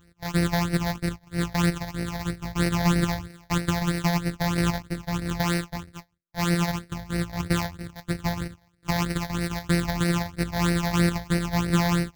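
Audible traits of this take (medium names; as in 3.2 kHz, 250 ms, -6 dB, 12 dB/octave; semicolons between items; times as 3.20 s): a buzz of ramps at a fixed pitch in blocks of 256 samples; phasing stages 8, 3.1 Hz, lowest notch 360–1000 Hz; AAC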